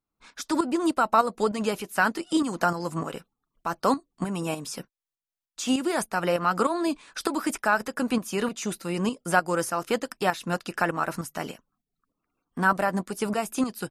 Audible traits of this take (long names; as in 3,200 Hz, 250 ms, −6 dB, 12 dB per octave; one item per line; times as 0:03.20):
tremolo saw up 3.3 Hz, depth 60%